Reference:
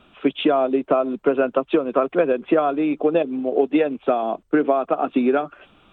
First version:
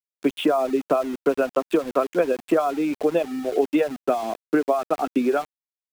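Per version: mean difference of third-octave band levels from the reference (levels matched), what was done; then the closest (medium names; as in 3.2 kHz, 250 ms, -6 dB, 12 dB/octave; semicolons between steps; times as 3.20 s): 7.5 dB: reverb removal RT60 0.52 s; small samples zeroed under -32 dBFS; trim -2 dB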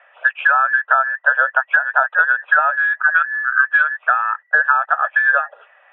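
12.5 dB: every band turned upside down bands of 2 kHz; elliptic band-pass 540–2500 Hz, stop band 40 dB; trim +4 dB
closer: first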